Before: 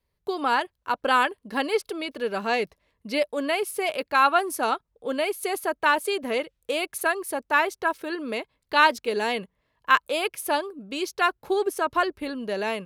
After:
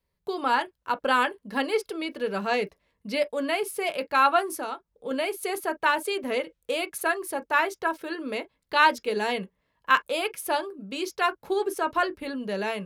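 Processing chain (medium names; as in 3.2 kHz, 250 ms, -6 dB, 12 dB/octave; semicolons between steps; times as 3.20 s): 4.46–5.11 s: compression 6:1, threshold -28 dBFS, peak gain reduction 8.5 dB; on a send: reverberation, pre-delay 3 ms, DRR 9.5 dB; on the sum: trim -2 dB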